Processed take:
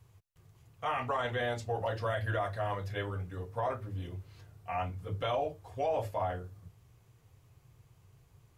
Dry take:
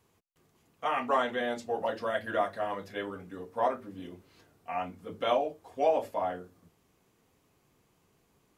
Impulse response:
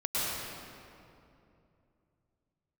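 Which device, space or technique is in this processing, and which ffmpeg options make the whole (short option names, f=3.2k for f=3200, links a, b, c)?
car stereo with a boomy subwoofer: -af "lowshelf=f=160:t=q:w=3:g=11,alimiter=limit=-24dB:level=0:latency=1:release=14"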